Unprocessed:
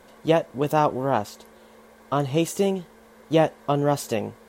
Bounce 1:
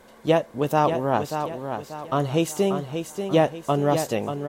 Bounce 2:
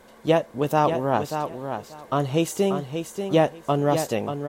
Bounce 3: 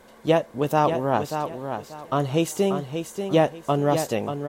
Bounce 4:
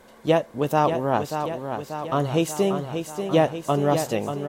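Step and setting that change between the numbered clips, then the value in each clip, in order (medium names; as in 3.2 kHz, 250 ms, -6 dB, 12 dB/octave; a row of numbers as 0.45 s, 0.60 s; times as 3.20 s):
feedback delay, feedback: 39%, 17%, 25%, 62%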